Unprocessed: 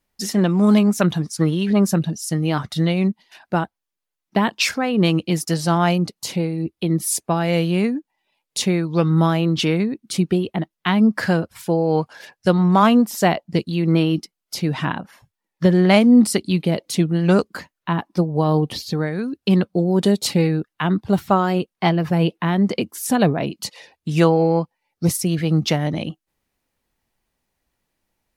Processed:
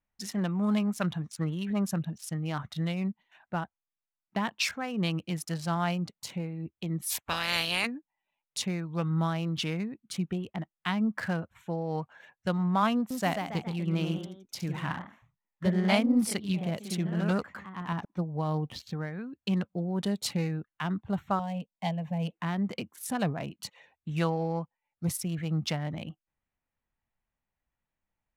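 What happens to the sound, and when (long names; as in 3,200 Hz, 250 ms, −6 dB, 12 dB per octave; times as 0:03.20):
0:07.09–0:07.85: ceiling on every frequency bin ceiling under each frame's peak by 29 dB
0:12.95–0:18.19: delay with pitch and tempo change per echo 154 ms, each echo +1 semitone, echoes 3, each echo −6 dB
0:21.39–0:22.31: phaser with its sweep stopped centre 360 Hz, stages 6
whole clip: adaptive Wiener filter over 9 samples; parametric band 370 Hz −8.5 dB 1.4 octaves; level −9 dB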